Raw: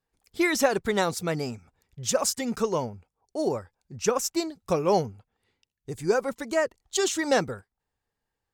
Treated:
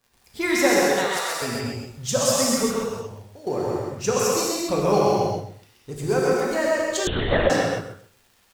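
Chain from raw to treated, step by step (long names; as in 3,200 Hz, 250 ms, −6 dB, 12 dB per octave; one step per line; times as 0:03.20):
mu-law and A-law mismatch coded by mu
0:00.80–0:01.42: high-pass filter 880 Hz 12 dB per octave
0:02.69–0:03.47: output level in coarse steps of 21 dB
surface crackle 92 per second −43 dBFS
repeating echo 130 ms, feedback 19%, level −3 dB
reverb whose tail is shaped and stops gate 300 ms flat, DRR −4 dB
0:07.07–0:07.50: linear-prediction vocoder at 8 kHz whisper
level −2 dB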